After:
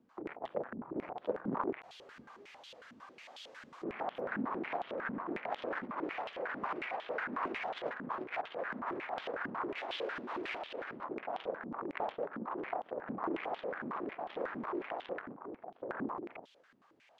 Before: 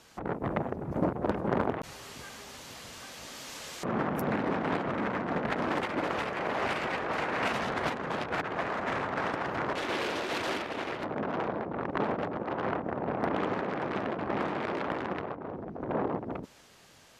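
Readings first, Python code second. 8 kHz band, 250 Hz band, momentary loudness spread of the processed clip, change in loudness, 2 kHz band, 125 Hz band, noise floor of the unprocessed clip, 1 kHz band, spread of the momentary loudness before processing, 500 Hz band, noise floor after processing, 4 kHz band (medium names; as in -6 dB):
under -20 dB, -8.5 dB, 13 LU, -7.5 dB, -7.0 dB, -16.5 dB, -57 dBFS, -7.0 dB, 11 LU, -7.0 dB, -65 dBFS, -9.0 dB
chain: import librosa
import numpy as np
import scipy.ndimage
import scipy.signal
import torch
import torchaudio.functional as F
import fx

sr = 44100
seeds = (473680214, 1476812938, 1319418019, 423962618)

y = fx.filter_held_bandpass(x, sr, hz=11.0, low_hz=240.0, high_hz=3300.0)
y = F.gain(torch.from_numpy(y), 2.0).numpy()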